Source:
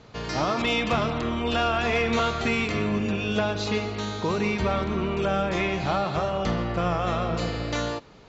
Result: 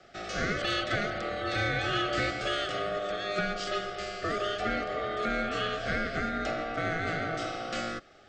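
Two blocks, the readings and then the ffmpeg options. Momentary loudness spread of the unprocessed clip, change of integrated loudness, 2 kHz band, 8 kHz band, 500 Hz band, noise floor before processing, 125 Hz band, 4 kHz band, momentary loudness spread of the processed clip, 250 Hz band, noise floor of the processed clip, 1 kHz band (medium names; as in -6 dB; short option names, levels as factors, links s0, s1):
5 LU, -5.5 dB, -1.5 dB, no reading, -6.0 dB, -48 dBFS, -9.5 dB, -2.5 dB, 5 LU, -9.5 dB, -55 dBFS, -5.0 dB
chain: -af "aeval=exprs='val(0)*sin(2*PI*840*n/s)':c=same,asuperstop=centerf=1000:order=12:qfactor=3.4,afreqshift=-22,volume=0.794"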